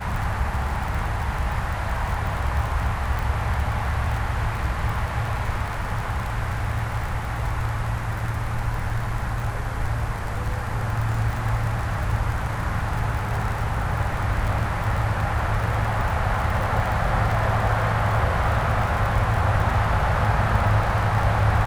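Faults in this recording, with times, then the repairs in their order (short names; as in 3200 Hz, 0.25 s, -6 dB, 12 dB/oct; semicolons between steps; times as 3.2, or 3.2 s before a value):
crackle 45/s -27 dBFS
3.19 pop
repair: de-click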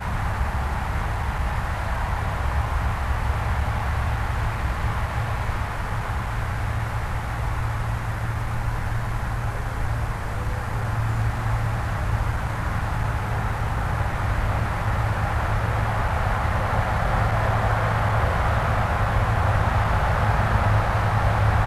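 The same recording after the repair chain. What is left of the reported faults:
3.19 pop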